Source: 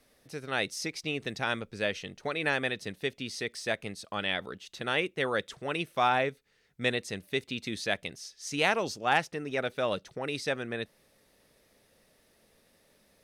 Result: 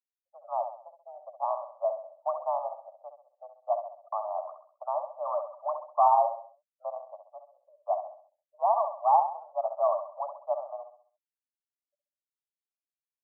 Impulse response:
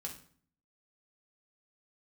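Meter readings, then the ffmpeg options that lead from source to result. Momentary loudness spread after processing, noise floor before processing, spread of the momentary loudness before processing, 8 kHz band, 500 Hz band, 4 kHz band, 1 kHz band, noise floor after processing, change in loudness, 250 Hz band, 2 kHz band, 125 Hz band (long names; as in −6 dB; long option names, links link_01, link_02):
21 LU, −67 dBFS, 9 LU, below −35 dB, +2.0 dB, below −40 dB, +6.5 dB, below −85 dBFS, +1.5 dB, below −40 dB, below −40 dB, below −40 dB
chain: -filter_complex "[0:a]afftfilt=real='re*gte(hypot(re,im),0.00501)':imag='im*gte(hypot(re,im),0.00501)':win_size=1024:overlap=0.75,acontrast=61,afreqshift=40,asuperpass=centerf=830:order=20:qfactor=1.4,asplit=2[link_01][link_02];[link_02]aecho=0:1:66|132|198|264|330:0.398|0.167|0.0702|0.0295|0.0124[link_03];[link_01][link_03]amix=inputs=2:normalize=0"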